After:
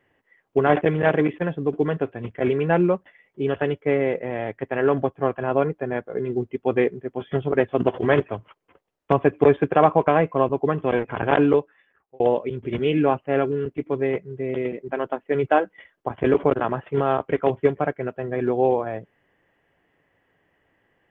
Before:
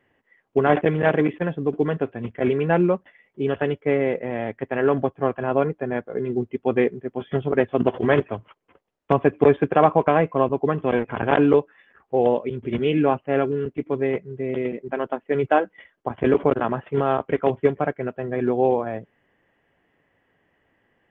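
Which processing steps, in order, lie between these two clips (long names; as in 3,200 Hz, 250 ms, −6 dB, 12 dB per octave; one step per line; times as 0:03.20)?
parametric band 230 Hz −5.5 dB 0.22 octaves
0:11.42–0:12.20: fade out
0:13.15–0:13.99: floating-point word with a short mantissa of 8 bits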